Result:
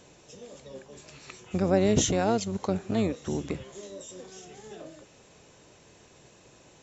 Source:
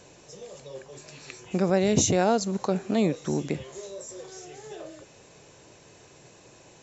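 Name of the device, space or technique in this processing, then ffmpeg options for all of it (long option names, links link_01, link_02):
octave pedal: -filter_complex "[0:a]asettb=1/sr,asplit=3[link_01][link_02][link_03];[link_01]atrim=end=1.654[link_04];[link_02]atrim=start=1.65:end=2.07,asetpts=PTS-STARTPTS,afade=type=in:duration=0.004:curve=qsin,afade=type=out:start_time=0.416:duration=0.004:curve=qsin,equalizer=frequency=510:width_type=o:width=1.9:gain=3.5[link_05];[link_03]atrim=start=2.066[link_06];[link_04][link_05]acrossfade=duration=0.004:curve1=hsin:curve2=qsin[link_07];[link_07][link_06]acrossfade=duration=0.004:curve1=qsin:curve2=hsin,asplit=2[link_08][link_09];[link_09]asetrate=22050,aresample=44100,atempo=2,volume=-8dB[link_10];[link_08][link_10]amix=inputs=2:normalize=0,volume=-3.5dB"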